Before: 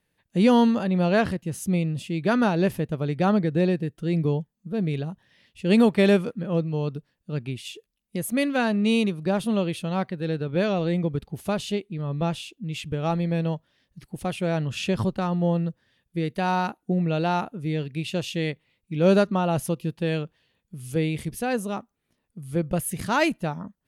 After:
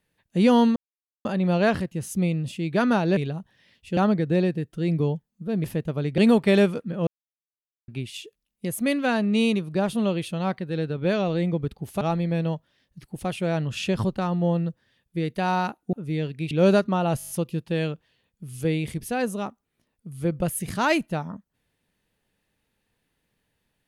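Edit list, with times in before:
0:00.76: splice in silence 0.49 s
0:02.68–0:03.22: swap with 0:04.89–0:05.69
0:06.58–0:07.39: silence
0:11.52–0:13.01: remove
0:16.93–0:17.49: remove
0:18.07–0:18.94: remove
0:19.61: stutter 0.02 s, 7 plays

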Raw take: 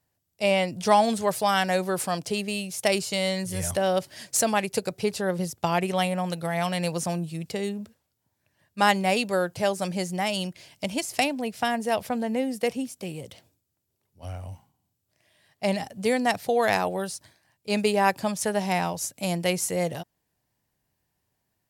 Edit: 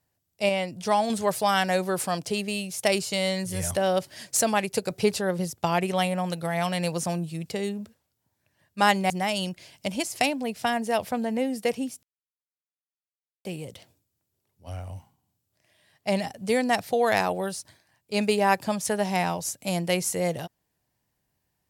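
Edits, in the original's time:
0:00.49–0:01.10: clip gain −4 dB
0:04.90–0:05.19: clip gain +3.5 dB
0:09.10–0:10.08: remove
0:13.01: splice in silence 1.42 s

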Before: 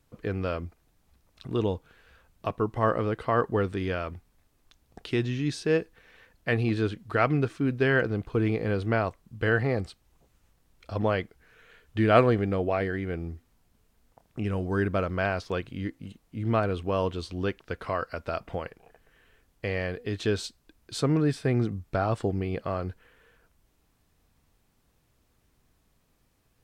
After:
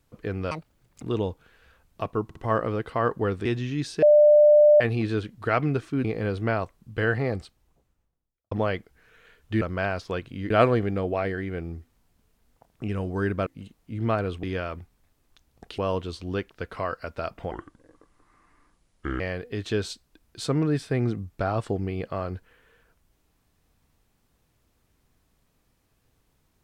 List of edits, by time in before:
0:00.51–0:01.47: play speed 187%
0:02.69: stutter 0.06 s, 3 plays
0:03.78–0:05.13: move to 0:16.88
0:05.70–0:06.48: beep over 596 Hz −11.5 dBFS
0:07.72–0:08.49: remove
0:09.76–0:10.96: fade out and dull
0:15.02–0:15.91: move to 0:12.06
0:18.61–0:19.74: play speed 67%

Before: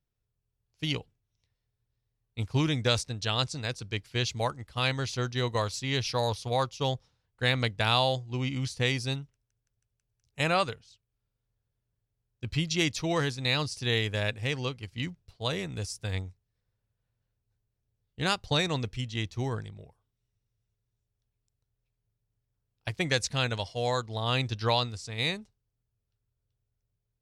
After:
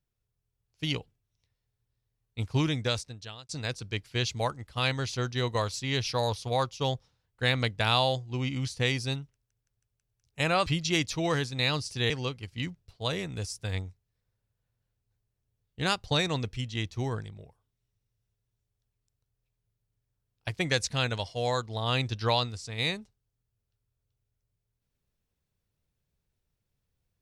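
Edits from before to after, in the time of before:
0:02.62–0:03.49: fade out
0:10.66–0:12.52: remove
0:13.96–0:14.50: remove

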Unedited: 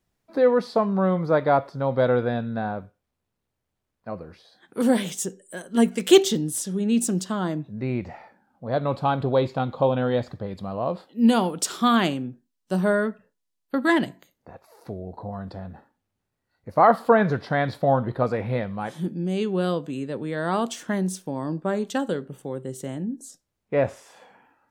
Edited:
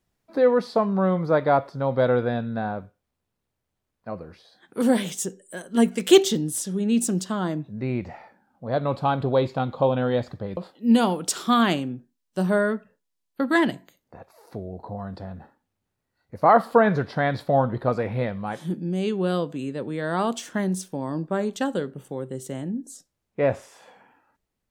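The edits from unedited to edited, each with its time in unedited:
0:10.57–0:10.91: remove

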